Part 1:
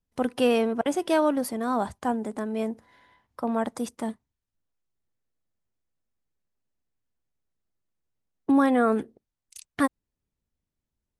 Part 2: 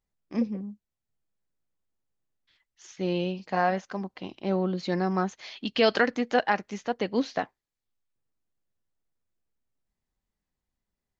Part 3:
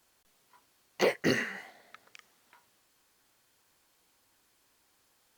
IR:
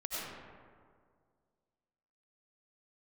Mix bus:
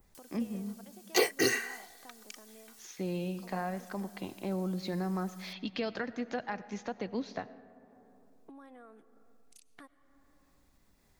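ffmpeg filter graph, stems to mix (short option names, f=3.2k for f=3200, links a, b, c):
-filter_complex "[0:a]lowshelf=f=230:g=-10.5,acompressor=threshold=-35dB:ratio=4,volume=-18.5dB,asplit=2[a][b];[b]volume=-19.5dB[c];[1:a]acrossover=split=150[d][e];[e]acompressor=threshold=-37dB:ratio=3[f];[d][f]amix=inputs=2:normalize=0,bandreject=f=3k:w=12,volume=-1dB,asplit=2[g][h];[h]volume=-17.5dB[i];[2:a]bass=f=250:g=-2,treble=f=4k:g=14,aecho=1:1:2.6:0.81,adelay=150,volume=-3dB[j];[3:a]atrim=start_sample=2205[k];[c][i]amix=inputs=2:normalize=0[l];[l][k]afir=irnorm=-1:irlink=0[m];[a][g][j][m]amix=inputs=4:normalize=0,adynamicequalizer=threshold=0.00501:dfrequency=4300:dqfactor=0.71:tfrequency=4300:tqfactor=0.71:attack=5:release=100:ratio=0.375:range=2:mode=cutabove:tftype=bell,acompressor=mode=upward:threshold=-50dB:ratio=2.5"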